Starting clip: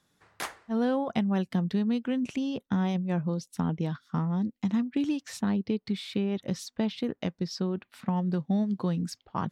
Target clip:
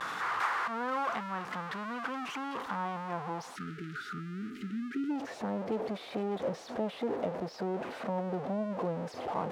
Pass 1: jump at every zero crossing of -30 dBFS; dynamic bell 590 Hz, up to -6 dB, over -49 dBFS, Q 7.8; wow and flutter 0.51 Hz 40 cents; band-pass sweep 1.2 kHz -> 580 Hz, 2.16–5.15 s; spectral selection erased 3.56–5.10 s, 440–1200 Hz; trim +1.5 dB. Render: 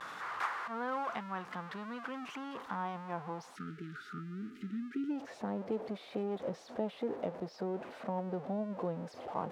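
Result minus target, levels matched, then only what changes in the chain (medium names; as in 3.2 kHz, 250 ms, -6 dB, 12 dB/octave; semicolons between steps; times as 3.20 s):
jump at every zero crossing: distortion -5 dB
change: jump at every zero crossing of -22 dBFS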